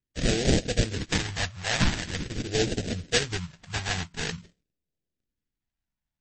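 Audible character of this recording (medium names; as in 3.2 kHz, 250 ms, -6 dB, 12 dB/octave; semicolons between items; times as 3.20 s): aliases and images of a low sample rate 1.2 kHz, jitter 20%; phasing stages 2, 0.46 Hz, lowest notch 430–1000 Hz; MP3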